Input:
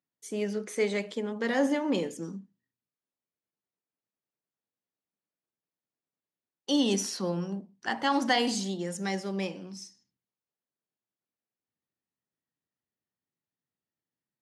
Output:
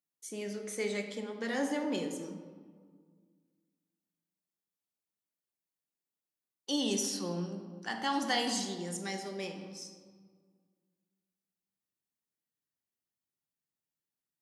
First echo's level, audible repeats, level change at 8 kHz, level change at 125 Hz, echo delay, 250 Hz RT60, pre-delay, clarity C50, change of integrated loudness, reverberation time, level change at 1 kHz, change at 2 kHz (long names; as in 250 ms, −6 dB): no echo audible, no echo audible, −0.5 dB, −6.0 dB, no echo audible, 2.3 s, 3 ms, 7.5 dB, −5.0 dB, 1.8 s, −5.0 dB, −5.0 dB